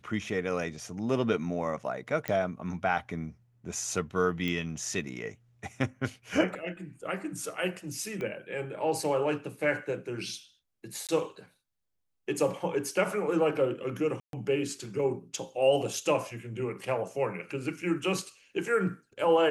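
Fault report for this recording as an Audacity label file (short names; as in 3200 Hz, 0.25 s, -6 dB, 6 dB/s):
2.280000	2.280000	pop -16 dBFS
4.480000	4.480000	pop -20 dBFS
8.210000	8.210000	pop -24 dBFS
11.070000	11.090000	gap 17 ms
14.200000	14.330000	gap 0.132 s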